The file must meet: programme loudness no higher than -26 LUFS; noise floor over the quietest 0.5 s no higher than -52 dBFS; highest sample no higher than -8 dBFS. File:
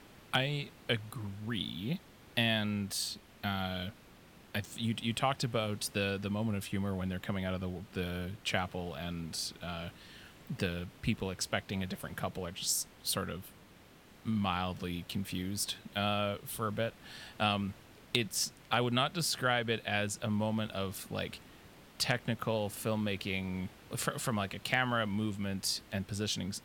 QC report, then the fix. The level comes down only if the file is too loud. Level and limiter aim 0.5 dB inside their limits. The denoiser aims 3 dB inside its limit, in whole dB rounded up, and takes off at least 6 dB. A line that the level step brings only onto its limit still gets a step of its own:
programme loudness -35.0 LUFS: OK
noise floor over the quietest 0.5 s -58 dBFS: OK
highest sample -15.5 dBFS: OK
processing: none

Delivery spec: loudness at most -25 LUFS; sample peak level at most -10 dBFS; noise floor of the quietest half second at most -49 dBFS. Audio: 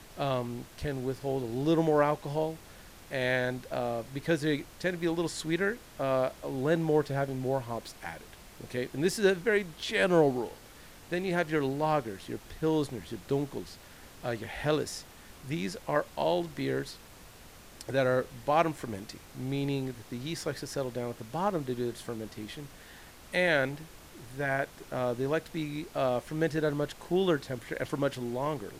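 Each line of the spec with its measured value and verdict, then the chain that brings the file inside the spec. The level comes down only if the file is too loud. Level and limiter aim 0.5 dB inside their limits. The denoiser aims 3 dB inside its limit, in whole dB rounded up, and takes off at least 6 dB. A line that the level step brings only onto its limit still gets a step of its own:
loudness -31.5 LUFS: OK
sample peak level -11.0 dBFS: OK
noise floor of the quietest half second -51 dBFS: OK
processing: none

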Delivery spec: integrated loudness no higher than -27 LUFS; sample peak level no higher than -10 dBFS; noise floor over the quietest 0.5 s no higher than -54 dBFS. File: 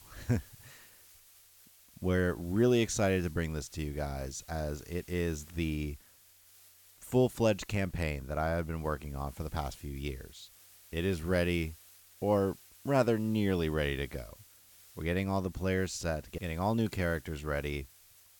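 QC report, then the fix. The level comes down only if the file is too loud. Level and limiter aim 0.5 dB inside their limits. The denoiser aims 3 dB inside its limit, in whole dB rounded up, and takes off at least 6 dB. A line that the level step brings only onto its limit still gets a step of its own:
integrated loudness -33.0 LUFS: OK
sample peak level -14.0 dBFS: OK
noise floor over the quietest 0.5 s -61 dBFS: OK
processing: none

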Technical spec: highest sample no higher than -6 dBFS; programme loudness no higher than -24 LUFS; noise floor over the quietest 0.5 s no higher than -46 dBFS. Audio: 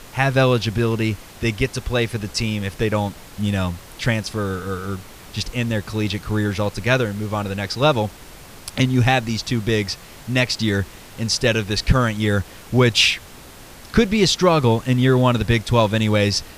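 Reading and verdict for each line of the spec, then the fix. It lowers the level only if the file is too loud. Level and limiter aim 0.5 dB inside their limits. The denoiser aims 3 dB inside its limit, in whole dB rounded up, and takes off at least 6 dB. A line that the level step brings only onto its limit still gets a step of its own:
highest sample -3.5 dBFS: fail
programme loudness -20.0 LUFS: fail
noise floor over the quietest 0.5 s -41 dBFS: fail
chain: denoiser 6 dB, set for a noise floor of -41 dBFS; gain -4.5 dB

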